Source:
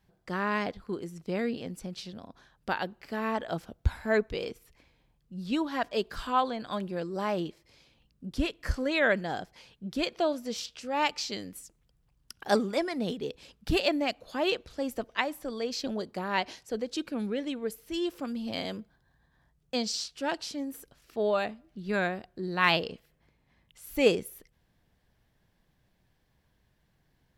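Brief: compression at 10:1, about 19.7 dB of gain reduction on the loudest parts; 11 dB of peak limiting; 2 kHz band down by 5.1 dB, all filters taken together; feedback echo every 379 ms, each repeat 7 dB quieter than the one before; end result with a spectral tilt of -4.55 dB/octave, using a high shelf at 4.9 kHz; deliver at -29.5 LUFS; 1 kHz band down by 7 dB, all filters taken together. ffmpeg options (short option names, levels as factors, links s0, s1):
-af "equalizer=f=1000:t=o:g=-8.5,equalizer=f=2000:t=o:g=-4.5,highshelf=f=4900:g=3,acompressor=threshold=0.0112:ratio=10,alimiter=level_in=3.55:limit=0.0631:level=0:latency=1,volume=0.282,aecho=1:1:379|758|1137|1516|1895:0.447|0.201|0.0905|0.0407|0.0183,volume=5.96"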